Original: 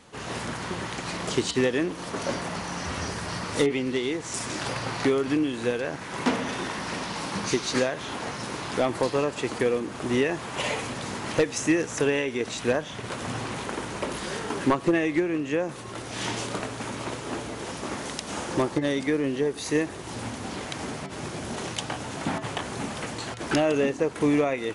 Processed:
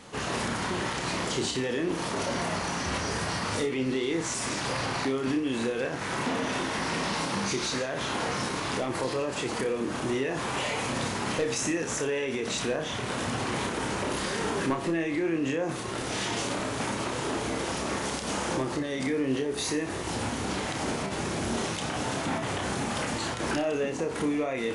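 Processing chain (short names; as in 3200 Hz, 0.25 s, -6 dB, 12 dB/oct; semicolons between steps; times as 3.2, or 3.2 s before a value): limiter -26 dBFS, peak gain reduction 11.5 dB; flutter echo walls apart 5.2 m, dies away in 0.28 s; gain +4 dB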